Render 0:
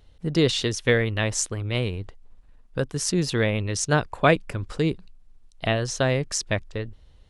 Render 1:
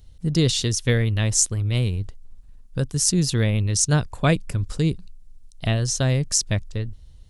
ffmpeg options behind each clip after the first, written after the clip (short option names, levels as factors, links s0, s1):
-af "bass=f=250:g=12,treble=f=4000:g=14,volume=0.562"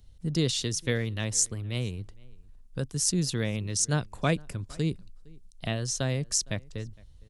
-filter_complex "[0:a]acrossover=split=130[s0][s1];[s0]acompressor=threshold=0.02:ratio=6[s2];[s2][s1]amix=inputs=2:normalize=0,asplit=2[s3][s4];[s4]adelay=460.6,volume=0.0562,highshelf=f=4000:g=-10.4[s5];[s3][s5]amix=inputs=2:normalize=0,volume=0.501"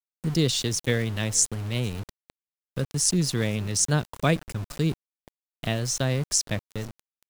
-af "aeval=exprs='val(0)*gte(abs(val(0)),0.0126)':c=same,volume=1.5"